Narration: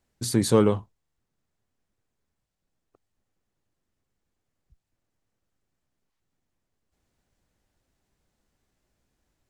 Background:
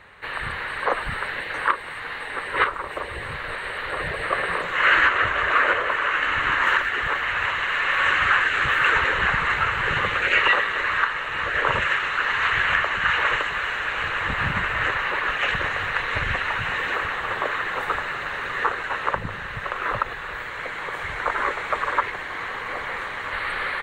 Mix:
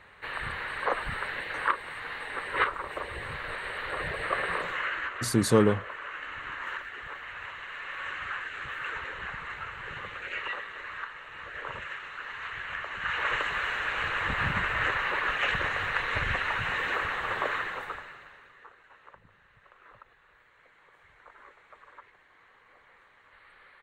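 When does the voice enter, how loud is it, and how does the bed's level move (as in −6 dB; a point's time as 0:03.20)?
5.00 s, −2.0 dB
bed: 0:04.70 −5.5 dB
0:04.91 −16.5 dB
0:12.68 −16.5 dB
0:13.47 −4.5 dB
0:17.56 −4.5 dB
0:18.60 −29 dB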